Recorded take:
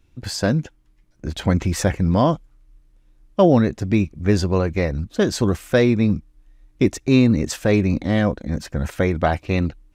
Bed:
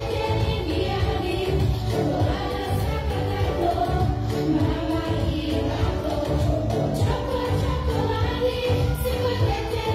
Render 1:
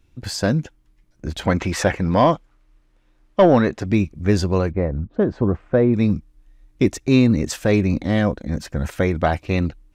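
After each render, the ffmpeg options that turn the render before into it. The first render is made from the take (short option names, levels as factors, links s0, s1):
-filter_complex "[0:a]asettb=1/sr,asplit=3[s0][s1][s2];[s0]atrim=end=1.464[s3];[s1]atrim=start=1.46:end=3.86,asetpts=PTS-STARTPTS,afade=t=in:d=0.004:c=qsin,afade=t=out:st=2.396:d=0.004:c=qsin,asplit=2[s4][s5];[s5]highpass=f=720:p=1,volume=4.47,asoftclip=type=tanh:threshold=0.75[s6];[s4][s6]amix=inputs=2:normalize=0,lowpass=f=2400:p=1,volume=0.501[s7];[s2]atrim=start=3.856[s8];[s3][s7]acrossfade=d=0.004:c1=hsin:c2=qsin[s9];[s9][s8]acrossfade=d=0.004:c1=qsin:c2=hsin,asettb=1/sr,asplit=3[s10][s11][s12];[s10]atrim=end=4.714[s13];[s11]atrim=start=4.71:end=5.94,asetpts=PTS-STARTPTS,afade=t=in:d=0.004:c=qsin,afade=t=out:st=1.226:d=0.004:c=qsin,lowpass=1100[s14];[s12]atrim=start=5.936[s15];[s13][s14]acrossfade=d=0.004:c1=hsin:c2=qsin[s16];[s16][s15]acrossfade=d=0.004:c1=qsin:c2=hsin"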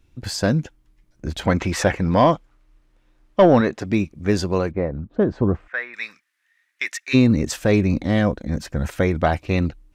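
-filter_complex "[0:a]asettb=1/sr,asplit=3[s0][s1][s2];[s0]atrim=end=3.614[s3];[s1]atrim=start=3.61:end=5.11,asetpts=PTS-STARTPTS,afade=t=in:d=0.004:c=qsin,afade=t=out:st=1.496:d=0.004:c=qsin,lowshelf=f=100:g=-11[s4];[s2]atrim=start=5.106[s5];[s3][s4]acrossfade=d=0.004:c1=hsin:c2=qsin[s6];[s6][s5]acrossfade=d=0.004:c1=qsin:c2=hsin,asplit=3[s7][s8][s9];[s7]afade=t=out:st=5.67:d=0.02[s10];[s8]highpass=f=1800:t=q:w=4,afade=t=in:st=5.67:d=0.02,afade=t=out:st=7.13:d=0.02[s11];[s9]afade=t=in:st=7.13:d=0.02[s12];[s10][s11][s12]amix=inputs=3:normalize=0"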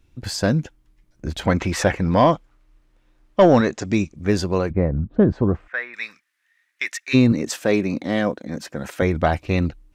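-filter_complex "[0:a]asettb=1/sr,asplit=3[s0][s1][s2];[s0]atrim=end=3.414[s3];[s1]atrim=start=3.41:end=4.16,asetpts=PTS-STARTPTS,afade=t=in:d=0.004:c=qsin,afade=t=out:st=0.746:d=0.004:c=qsin,lowpass=f=7000:t=q:w=3.3[s4];[s2]atrim=start=4.156[s5];[s3][s4]acrossfade=d=0.004:c1=hsin:c2=qsin[s6];[s6][s5]acrossfade=d=0.004:c1=qsin:c2=hsin,asettb=1/sr,asplit=3[s7][s8][s9];[s7]atrim=end=4.704[s10];[s8]atrim=start=4.7:end=5.33,asetpts=PTS-STARTPTS,afade=t=in:d=0.004:c=qsin,afade=t=out:st=0.626:d=0.004:c=qsin,bass=f=250:g=8,treble=f=4000:g=-6[s11];[s9]atrim=start=5.326[s12];[s10][s11]acrossfade=d=0.004:c1=hsin:c2=qsin[s13];[s13][s12]acrossfade=d=0.004:c1=qsin:c2=hsin,asettb=1/sr,asplit=3[s14][s15][s16];[s14]atrim=end=7.324[s17];[s15]atrim=start=7.32:end=9.02,asetpts=PTS-STARTPTS,afade=t=in:d=0.004:c=qsin,afade=t=out:st=1.696:d=0.004:c=qsin,highpass=220[s18];[s16]atrim=start=9.016[s19];[s17][s18]acrossfade=d=0.004:c1=hsin:c2=qsin[s20];[s20][s19]acrossfade=d=0.004:c1=qsin:c2=hsin"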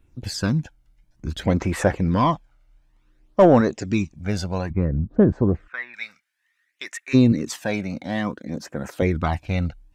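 -af "flanger=delay=0.1:depth=1.3:regen=6:speed=0.57:shape=sinusoidal,asoftclip=type=hard:threshold=0.562"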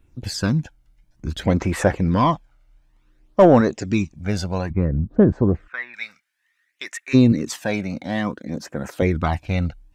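-af "volume=1.19"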